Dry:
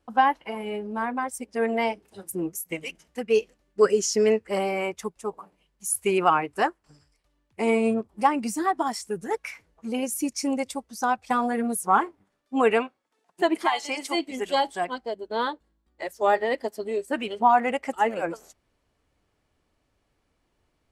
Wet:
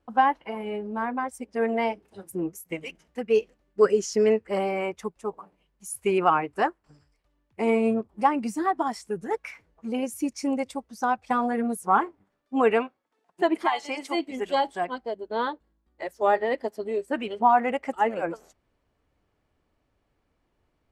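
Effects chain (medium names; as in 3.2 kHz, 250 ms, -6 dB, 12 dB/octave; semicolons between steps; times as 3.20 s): treble shelf 3.7 kHz -10 dB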